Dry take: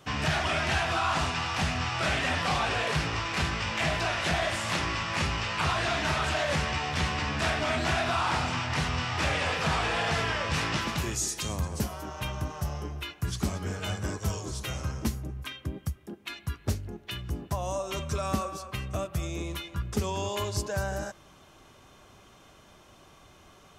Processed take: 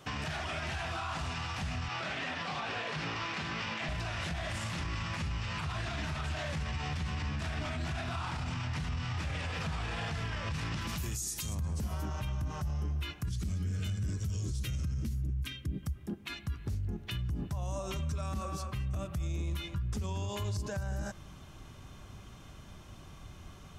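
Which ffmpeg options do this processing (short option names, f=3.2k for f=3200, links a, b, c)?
-filter_complex "[0:a]asettb=1/sr,asplit=3[a][b][c];[a]atrim=end=1.884[d];[b]atrim=start=1.88:end=3.89,asetpts=PTS-STARTPTS,afade=t=in:d=0.004:c=qsin,afade=t=out:st=2.006:d=0.004:c=qsin,highpass=220,lowpass=5.4k[e];[c]atrim=start=3.886[f];[d][e]acrossfade=d=0.004:c1=hsin:c2=qsin[g];[g][f]acrossfade=d=0.004:c1=qsin:c2=hsin,asettb=1/sr,asplit=3[h][i][j];[h]atrim=end=10.874[k];[i]atrim=start=10.87:end=11.55,asetpts=PTS-STARTPTS,afade=t=in:d=0.004:c=qsin,afade=t=out:st=0.676:d=0.004:c=qsin,aemphasis=mode=production:type=50fm[l];[j]atrim=start=11.546[m];[k][l]acrossfade=d=0.004:c1=hsin:c2=qsin[n];[n][m]acrossfade=d=0.004:c1=qsin:c2=hsin,asettb=1/sr,asplit=3[o][p][q];[o]atrim=end=13.294[r];[p]atrim=start=13.29:end=15.83,asetpts=PTS-STARTPTS,afade=t=in:d=0.004:c=qsin,afade=t=out:st=2.536:d=0.004:c=qsin,equalizer=f=870:w=1.1:g=-14.5[s];[q]atrim=start=15.826[t];[r][s]acrossfade=d=0.004:c1=hsin:c2=qsin[u];[u][t]acrossfade=d=0.004:c1=qsin:c2=hsin,acompressor=threshold=-30dB:ratio=6,asubboost=boost=3.5:cutoff=220,alimiter=level_in=4dB:limit=-24dB:level=0:latency=1:release=54,volume=-4dB"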